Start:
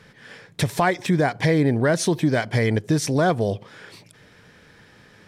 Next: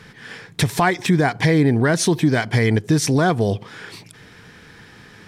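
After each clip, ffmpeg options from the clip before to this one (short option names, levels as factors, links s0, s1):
-filter_complex "[0:a]equalizer=f=570:w=4.5:g=-8.5,asplit=2[s0][s1];[s1]alimiter=limit=0.126:level=0:latency=1:release=256,volume=1.19[s2];[s0][s2]amix=inputs=2:normalize=0"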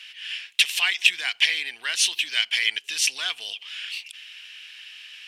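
-af "highpass=f=2800:t=q:w=9.3,volume=0.891"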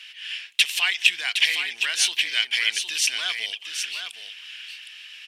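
-af "aecho=1:1:763:0.422"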